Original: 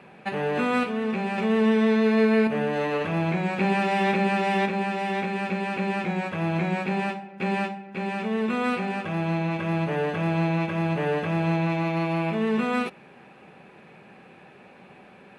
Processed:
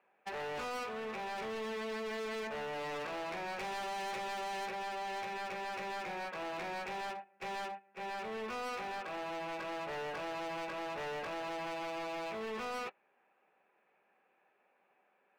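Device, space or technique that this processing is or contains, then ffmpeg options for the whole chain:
walkie-talkie: -af "highpass=540,lowpass=2300,asoftclip=type=hard:threshold=-34dB,agate=range=-16dB:threshold=-39dB:ratio=16:detection=peak,volume=-4dB"

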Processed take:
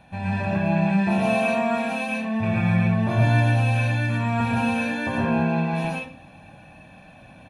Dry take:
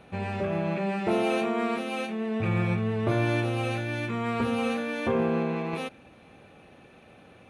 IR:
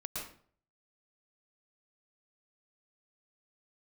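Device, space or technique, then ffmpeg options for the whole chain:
microphone above a desk: -filter_complex "[0:a]aecho=1:1:1.2:0.8[link_01];[1:a]atrim=start_sample=2205[link_02];[link_01][link_02]afir=irnorm=-1:irlink=0,volume=2.5dB"

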